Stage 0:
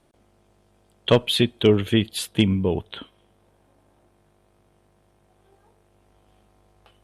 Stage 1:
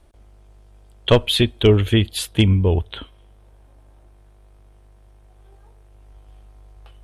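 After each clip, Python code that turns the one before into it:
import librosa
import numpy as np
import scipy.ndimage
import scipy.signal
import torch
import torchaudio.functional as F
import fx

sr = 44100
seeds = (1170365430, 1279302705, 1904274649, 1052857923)

y = fx.low_shelf_res(x, sr, hz=100.0, db=13.5, q=1.5)
y = y * librosa.db_to_amplitude(3.0)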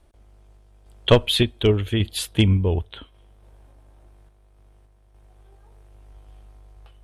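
y = fx.tremolo_random(x, sr, seeds[0], hz=3.5, depth_pct=55)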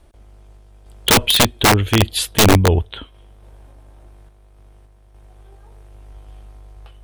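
y = (np.mod(10.0 ** (12.5 / 20.0) * x + 1.0, 2.0) - 1.0) / 10.0 ** (12.5 / 20.0)
y = y * librosa.db_to_amplitude(7.0)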